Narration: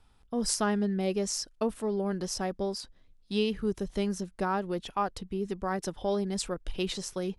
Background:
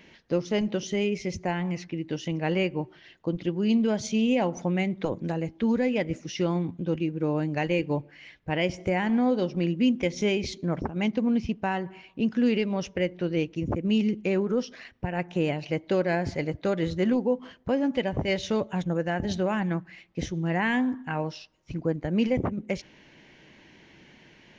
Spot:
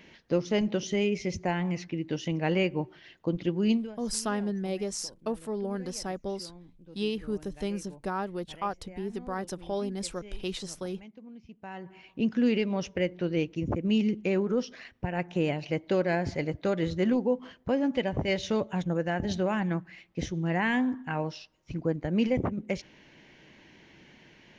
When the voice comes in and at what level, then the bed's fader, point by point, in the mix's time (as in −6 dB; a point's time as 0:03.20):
3.65 s, −2.5 dB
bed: 0:03.71 −0.5 dB
0:03.98 −23 dB
0:11.41 −23 dB
0:12.09 −1.5 dB